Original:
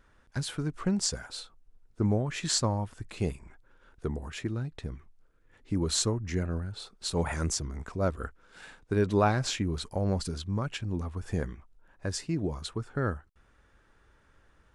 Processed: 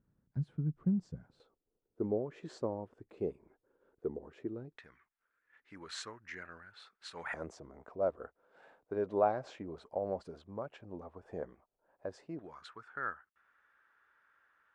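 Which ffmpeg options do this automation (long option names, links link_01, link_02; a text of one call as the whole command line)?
ffmpeg -i in.wav -af "asetnsamples=nb_out_samples=441:pad=0,asendcmd='1.4 bandpass f 430;4.77 bandpass f 1700;7.34 bandpass f 610;12.39 bandpass f 1500',bandpass=frequency=160:width_type=q:width=2.2:csg=0" out.wav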